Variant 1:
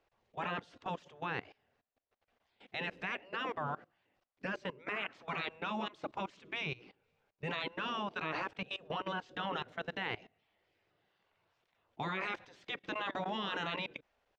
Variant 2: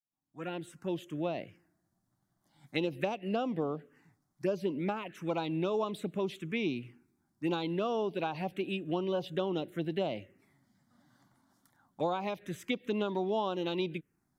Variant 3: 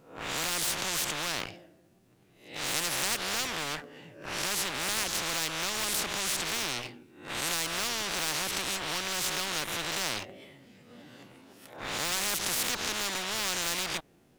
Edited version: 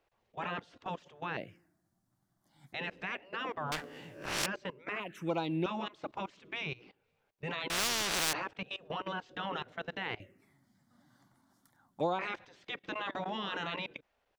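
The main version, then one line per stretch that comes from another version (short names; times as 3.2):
1
1.37–2.73 from 2
3.72–4.46 from 3
5–5.66 from 2
7.7–8.33 from 3
10.2–12.19 from 2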